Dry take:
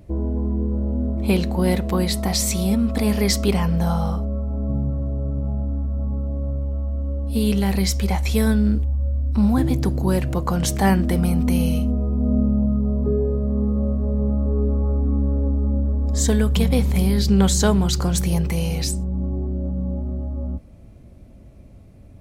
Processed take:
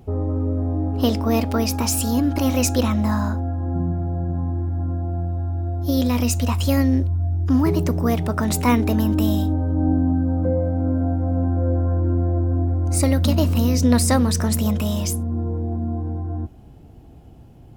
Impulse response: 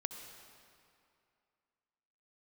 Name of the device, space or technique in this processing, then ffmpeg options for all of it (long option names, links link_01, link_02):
nightcore: -af "asetrate=55125,aresample=44100"